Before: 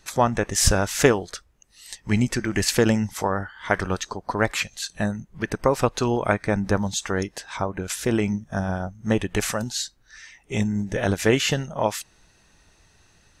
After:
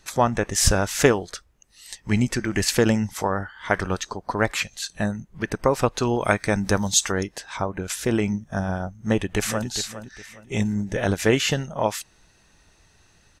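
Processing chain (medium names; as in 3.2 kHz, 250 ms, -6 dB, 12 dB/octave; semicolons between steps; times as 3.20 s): 6.20–7.12 s: treble shelf 3.1 kHz +11.5 dB; 8.88–9.67 s: echo throw 410 ms, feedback 30%, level -11.5 dB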